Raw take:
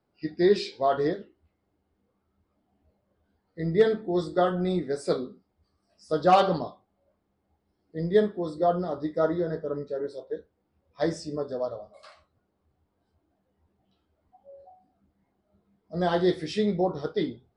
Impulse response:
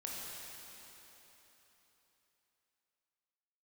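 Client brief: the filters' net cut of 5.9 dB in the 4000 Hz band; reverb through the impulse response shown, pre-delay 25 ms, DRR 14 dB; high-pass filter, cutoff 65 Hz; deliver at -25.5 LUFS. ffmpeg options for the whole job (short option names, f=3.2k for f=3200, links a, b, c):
-filter_complex "[0:a]highpass=65,equalizer=f=4k:t=o:g=-7.5,asplit=2[a][b];[1:a]atrim=start_sample=2205,adelay=25[c];[b][c]afir=irnorm=-1:irlink=0,volume=-14.5dB[d];[a][d]amix=inputs=2:normalize=0,volume=1.5dB"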